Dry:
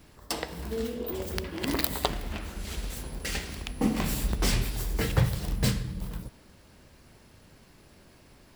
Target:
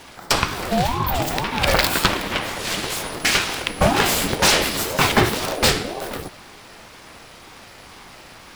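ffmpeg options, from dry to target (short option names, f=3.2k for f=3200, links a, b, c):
-filter_complex "[0:a]asplit=2[a][b];[b]highpass=f=720:p=1,volume=21dB,asoftclip=type=tanh:threshold=-4.5dB[c];[a][c]amix=inputs=2:normalize=0,lowpass=f=5.1k:p=1,volume=-6dB,aeval=exprs='val(0)*sin(2*PI*420*n/s+420*0.45/2*sin(2*PI*2*n/s))':c=same,volume=6.5dB"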